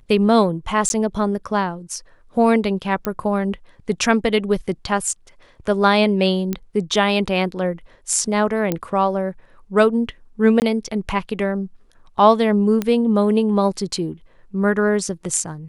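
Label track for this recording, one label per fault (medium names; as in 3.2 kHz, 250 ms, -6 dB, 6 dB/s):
0.890000	0.900000	dropout
3.050000	3.050000	pop -8 dBFS
6.530000	6.530000	pop -10 dBFS
8.720000	8.720000	pop -7 dBFS
10.600000	10.620000	dropout 19 ms
12.820000	12.820000	pop -9 dBFS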